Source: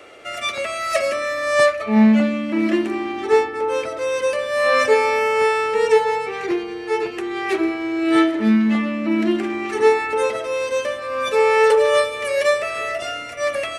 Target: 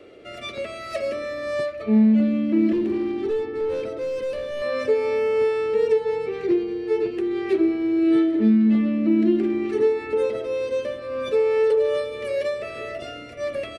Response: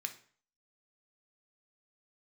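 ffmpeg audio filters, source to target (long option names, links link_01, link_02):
-filter_complex "[0:a]acompressor=threshold=-16dB:ratio=6,asettb=1/sr,asplit=3[link_01][link_02][link_03];[link_01]atrim=end=2.724[link_04];[link_02]atrim=start=2.72:end=4.62,asetpts=PTS-STARTPTS,afade=type=in:duration=0.004:curve=qsin,afade=type=out:start_time=1.896:duration=0.004:curve=qsin,volume=21.5dB,asoftclip=hard,volume=-21.5dB[link_05];[link_03]atrim=start=4.616[link_06];[link_04][link_05]acrossfade=duration=0.004:curve1=hsin:curve2=qsin[link_07];[link_07][link_06]acrossfade=duration=0.004:curve1=qsin:curve2=hsin,firequalizer=gain_entry='entry(400,0);entry(810,-15);entry(4200,-10);entry(6200,-18)':delay=0.05:min_phase=1,volume=2.5dB"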